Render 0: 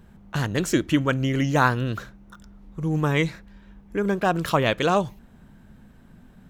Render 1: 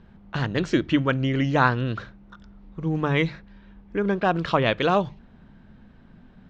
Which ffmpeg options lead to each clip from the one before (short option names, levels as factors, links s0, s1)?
-af "lowpass=f=4700:w=0.5412,lowpass=f=4700:w=1.3066,bandreject=f=50:t=h:w=6,bandreject=f=100:t=h:w=6,bandreject=f=150:t=h:w=6"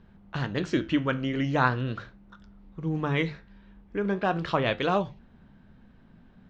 -af "flanger=delay=9.6:depth=9.8:regen=-70:speed=0.41:shape=triangular"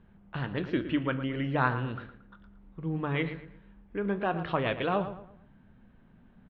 -filter_complex "[0:a]lowpass=f=3400:w=0.5412,lowpass=f=3400:w=1.3066,asplit=2[s0][s1];[s1]adelay=114,lowpass=f=2600:p=1,volume=0.282,asplit=2[s2][s3];[s3]adelay=114,lowpass=f=2600:p=1,volume=0.36,asplit=2[s4][s5];[s5]adelay=114,lowpass=f=2600:p=1,volume=0.36,asplit=2[s6][s7];[s7]adelay=114,lowpass=f=2600:p=1,volume=0.36[s8];[s0][s2][s4][s6][s8]amix=inputs=5:normalize=0,volume=0.668"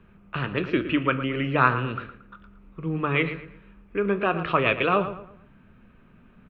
-filter_complex "[0:a]equalizer=f=400:t=o:w=0.33:g=4,equalizer=f=800:t=o:w=0.33:g=-6,equalizer=f=1250:t=o:w=0.33:g=9,equalizer=f=2500:t=o:w=0.33:g=12,acrossover=split=250|920[s0][s1][s2];[s1]crystalizer=i=9.5:c=0[s3];[s0][s3][s2]amix=inputs=3:normalize=0,volume=1.5"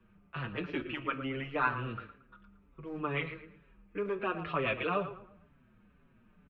-filter_complex "[0:a]acrossover=split=310|1900[s0][s1][s2];[s0]asoftclip=type=hard:threshold=0.0355[s3];[s3][s1][s2]amix=inputs=3:normalize=0,asplit=2[s4][s5];[s5]adelay=5.8,afreqshift=-2.1[s6];[s4][s6]amix=inputs=2:normalize=1,volume=0.447"